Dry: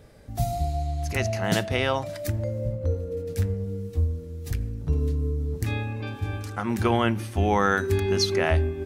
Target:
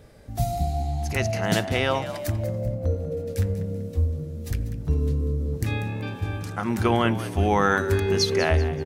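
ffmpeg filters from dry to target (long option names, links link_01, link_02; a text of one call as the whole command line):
ffmpeg -i in.wav -filter_complex "[0:a]asplit=4[link_01][link_02][link_03][link_04];[link_02]adelay=192,afreqshift=69,volume=-13.5dB[link_05];[link_03]adelay=384,afreqshift=138,volume=-22.4dB[link_06];[link_04]adelay=576,afreqshift=207,volume=-31.2dB[link_07];[link_01][link_05][link_06][link_07]amix=inputs=4:normalize=0,volume=1dB" out.wav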